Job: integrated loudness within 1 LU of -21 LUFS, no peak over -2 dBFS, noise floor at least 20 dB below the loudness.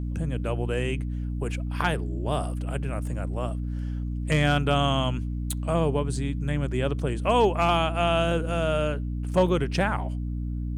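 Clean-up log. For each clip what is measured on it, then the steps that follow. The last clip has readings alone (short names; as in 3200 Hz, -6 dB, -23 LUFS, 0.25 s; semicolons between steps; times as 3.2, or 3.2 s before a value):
hum 60 Hz; harmonics up to 300 Hz; hum level -27 dBFS; loudness -26.5 LUFS; peak -10.0 dBFS; loudness target -21.0 LUFS
-> notches 60/120/180/240/300 Hz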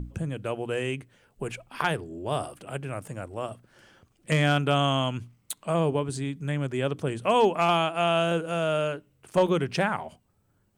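hum none; loudness -27.5 LUFS; peak -11.0 dBFS; loudness target -21.0 LUFS
-> gain +6.5 dB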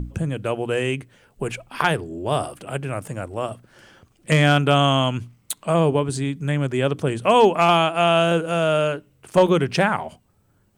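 loudness -21.0 LUFS; peak -4.5 dBFS; noise floor -62 dBFS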